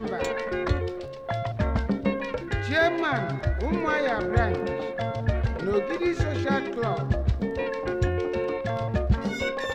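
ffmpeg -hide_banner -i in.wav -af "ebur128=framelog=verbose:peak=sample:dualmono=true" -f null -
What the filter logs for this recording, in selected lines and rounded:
Integrated loudness:
  I:         -23.9 LUFS
  Threshold: -33.9 LUFS
Loudness range:
  LRA:         1.4 LU
  Threshold: -43.6 LUFS
  LRA low:   -24.2 LUFS
  LRA high:  -22.8 LUFS
Sample peak:
  Peak:       -9.4 dBFS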